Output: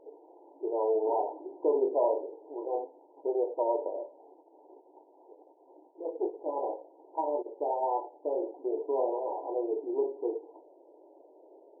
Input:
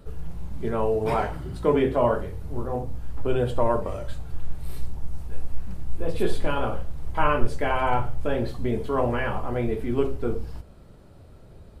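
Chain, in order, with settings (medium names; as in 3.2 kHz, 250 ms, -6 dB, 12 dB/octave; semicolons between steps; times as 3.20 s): in parallel at -1 dB: compression, threshold -29 dBFS, peak gain reduction 18 dB; on the sum: saturation -12 dBFS, distortion -17 dB; brick-wall FIR band-pass 290–1000 Hz; trim -4.5 dB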